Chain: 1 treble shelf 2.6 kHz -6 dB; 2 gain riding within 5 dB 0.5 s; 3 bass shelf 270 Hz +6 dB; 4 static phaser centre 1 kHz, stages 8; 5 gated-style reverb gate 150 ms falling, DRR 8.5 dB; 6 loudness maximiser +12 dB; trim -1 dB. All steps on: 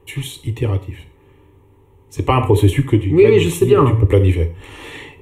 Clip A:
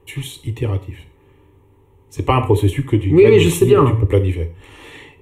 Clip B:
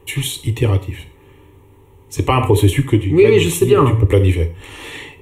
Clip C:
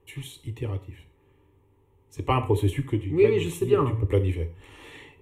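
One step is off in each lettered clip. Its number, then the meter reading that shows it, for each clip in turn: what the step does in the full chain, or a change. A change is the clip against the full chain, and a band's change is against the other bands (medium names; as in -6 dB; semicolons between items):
2, 125 Hz band -1.5 dB; 1, momentary loudness spread change -2 LU; 6, crest factor change +5.0 dB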